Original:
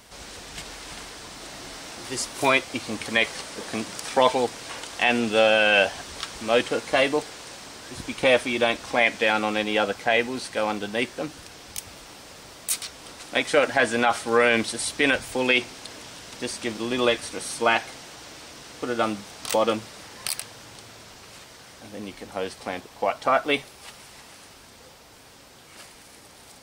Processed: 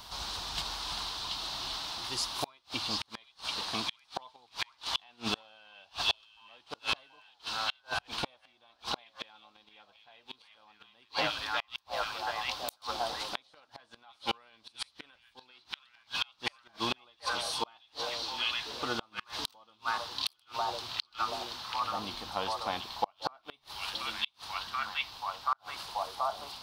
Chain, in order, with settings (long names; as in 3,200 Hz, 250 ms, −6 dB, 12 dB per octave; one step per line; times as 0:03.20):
graphic EQ with 10 bands 125 Hz −3 dB, 250 Hz −7 dB, 500 Hz −11 dB, 1,000 Hz +9 dB, 2,000 Hz −11 dB, 4,000 Hz +10 dB, 8,000 Hz −10 dB
echo through a band-pass that steps 732 ms, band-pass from 3,500 Hz, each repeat −0.7 octaves, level 0 dB
gate with flip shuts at −17 dBFS, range −37 dB
speech leveller within 3 dB 0.5 s